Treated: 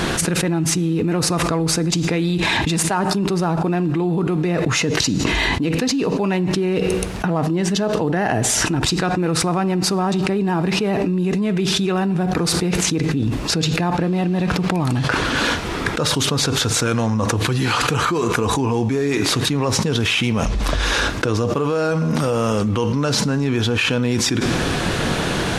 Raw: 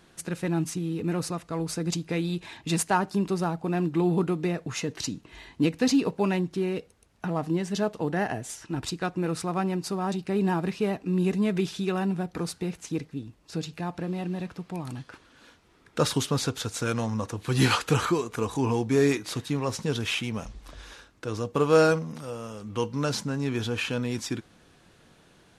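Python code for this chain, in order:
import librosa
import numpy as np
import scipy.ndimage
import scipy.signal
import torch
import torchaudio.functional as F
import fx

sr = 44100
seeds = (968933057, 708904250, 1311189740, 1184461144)

y = fx.high_shelf(x, sr, hz=7800.0, db=-6.5)
y = fx.rev_schroeder(y, sr, rt60_s=0.73, comb_ms=38, drr_db=19.0)
y = fx.env_flatten(y, sr, amount_pct=100)
y = y * 10.0 ** (-3.0 / 20.0)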